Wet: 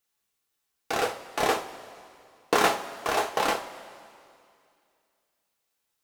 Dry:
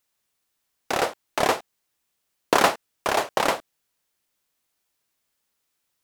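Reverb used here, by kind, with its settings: two-slope reverb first 0.29 s, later 2.4 s, from -18 dB, DRR 0.5 dB; gain -5.5 dB

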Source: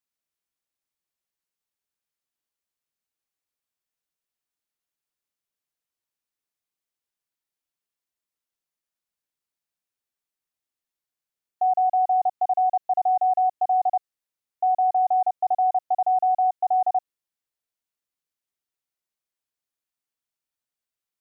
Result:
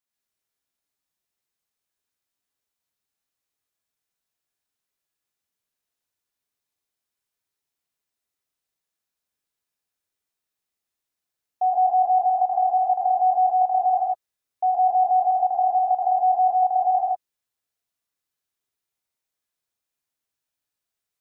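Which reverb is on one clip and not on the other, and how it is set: non-linear reverb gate 0.18 s rising, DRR -3 dB; gain -1 dB

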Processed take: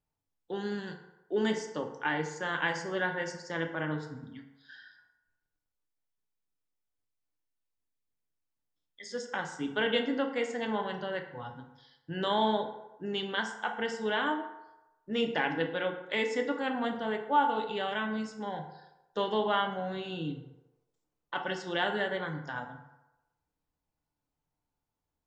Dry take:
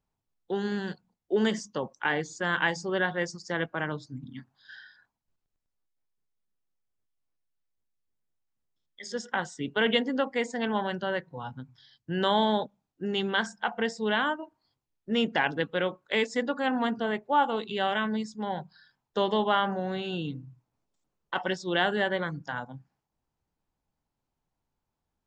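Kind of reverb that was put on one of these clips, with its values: FDN reverb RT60 0.99 s, low-frequency decay 0.7×, high-frequency decay 0.55×, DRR 3.5 dB; gain -5 dB

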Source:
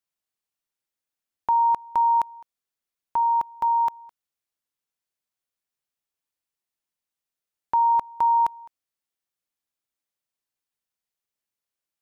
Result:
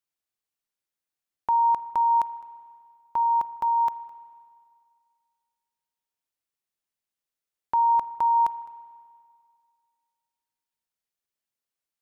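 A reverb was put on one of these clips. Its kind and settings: spring tank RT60 2.1 s, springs 37/49 ms, chirp 40 ms, DRR 15.5 dB; gain -2 dB

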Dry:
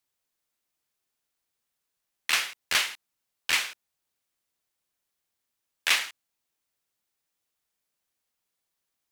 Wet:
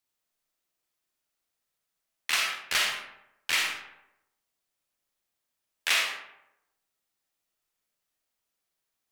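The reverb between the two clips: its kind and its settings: digital reverb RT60 0.86 s, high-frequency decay 0.55×, pre-delay 5 ms, DRR 0 dB; gain -3 dB

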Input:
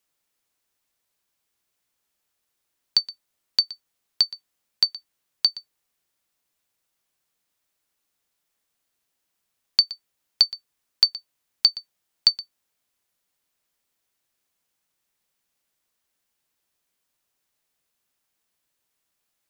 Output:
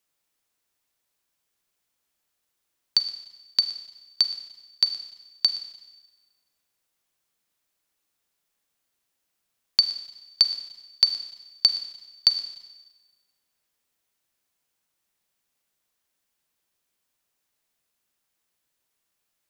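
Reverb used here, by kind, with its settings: Schroeder reverb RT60 1.2 s, combs from 33 ms, DRR 9.5 dB; gain -1 dB

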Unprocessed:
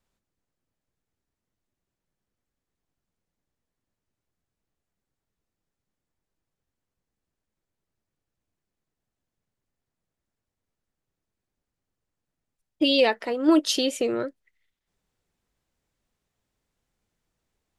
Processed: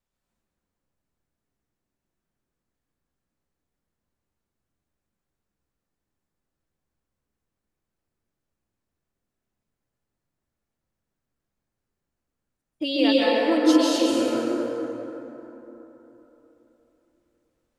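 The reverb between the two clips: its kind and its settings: plate-style reverb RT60 3.7 s, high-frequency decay 0.45×, pre-delay 0.12 s, DRR -7.5 dB; gain -6.5 dB

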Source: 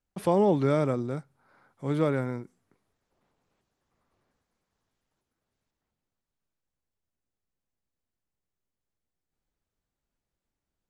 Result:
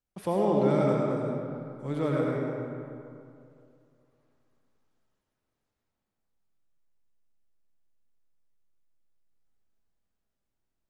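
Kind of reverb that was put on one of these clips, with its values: digital reverb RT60 2.5 s, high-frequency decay 0.55×, pre-delay 50 ms, DRR -2.5 dB; gain -5 dB

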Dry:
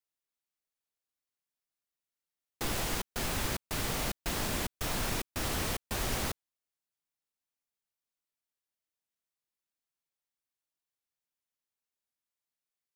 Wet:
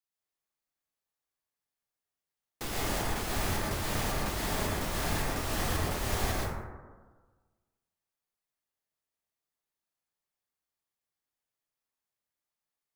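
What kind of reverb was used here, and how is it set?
plate-style reverb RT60 1.4 s, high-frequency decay 0.3×, pre-delay 0.105 s, DRR -5 dB; gain -3.5 dB

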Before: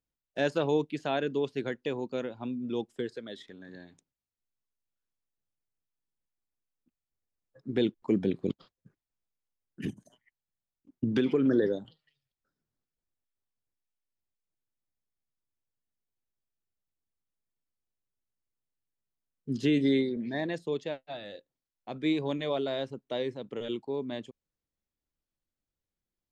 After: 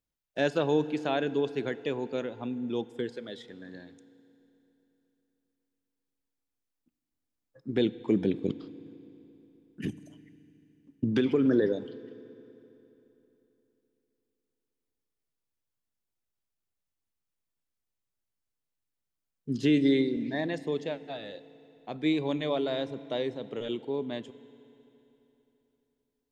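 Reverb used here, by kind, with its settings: FDN reverb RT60 3.4 s, high-frequency decay 0.9×, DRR 15.5 dB; gain +1 dB

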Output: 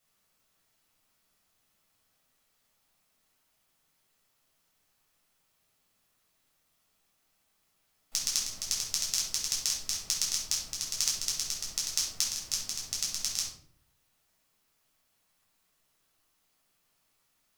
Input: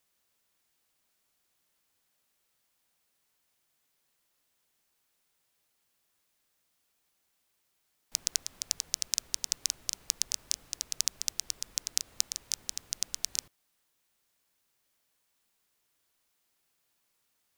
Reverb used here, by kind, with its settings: shoebox room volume 750 m³, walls furnished, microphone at 6.7 m; gain -4.5 dB

